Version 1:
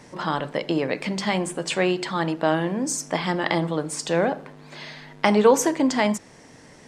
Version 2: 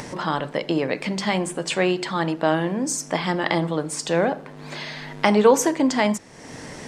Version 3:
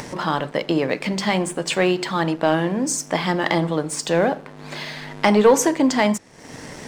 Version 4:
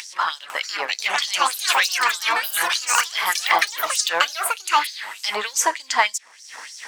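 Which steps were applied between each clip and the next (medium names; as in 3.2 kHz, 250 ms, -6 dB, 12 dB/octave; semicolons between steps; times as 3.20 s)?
upward compressor, threshold -27 dBFS; trim +1 dB
waveshaping leveller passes 1; trim -1.5 dB
ever faster or slower copies 500 ms, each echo +6 st, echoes 3; LFO high-pass sine 3.3 Hz 960–5900 Hz; trim +1 dB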